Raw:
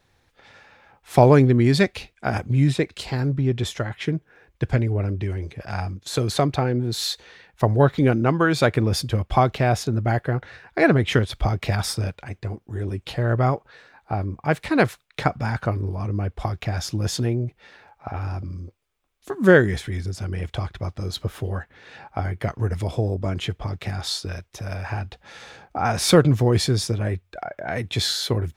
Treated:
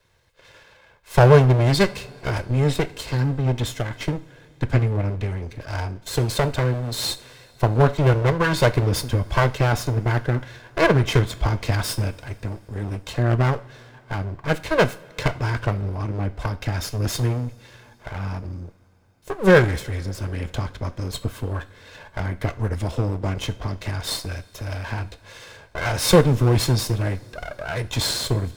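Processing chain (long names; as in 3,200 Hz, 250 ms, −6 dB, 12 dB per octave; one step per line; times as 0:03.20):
lower of the sound and its delayed copy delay 1.9 ms
coupled-rooms reverb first 0.38 s, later 4.6 s, from −21 dB, DRR 11.5 dB
level +1.5 dB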